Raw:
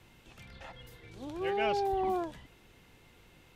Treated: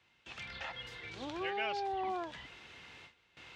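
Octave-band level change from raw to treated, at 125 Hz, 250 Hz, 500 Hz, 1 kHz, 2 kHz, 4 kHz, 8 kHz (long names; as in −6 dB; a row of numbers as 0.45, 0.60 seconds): −6.5 dB, −6.5 dB, −8.0 dB, −4.0 dB, +1.5 dB, +2.0 dB, can't be measured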